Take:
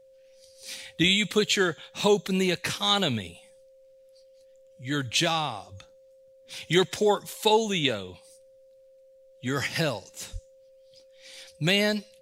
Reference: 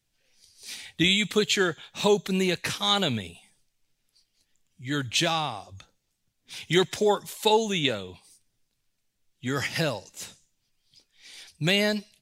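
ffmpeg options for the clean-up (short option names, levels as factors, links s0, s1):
-filter_complex "[0:a]bandreject=f=530:w=30,asplit=3[s0][s1][s2];[s0]afade=t=out:st=10.32:d=0.02[s3];[s1]highpass=f=140:w=0.5412,highpass=f=140:w=1.3066,afade=t=in:st=10.32:d=0.02,afade=t=out:st=10.44:d=0.02[s4];[s2]afade=t=in:st=10.44:d=0.02[s5];[s3][s4][s5]amix=inputs=3:normalize=0"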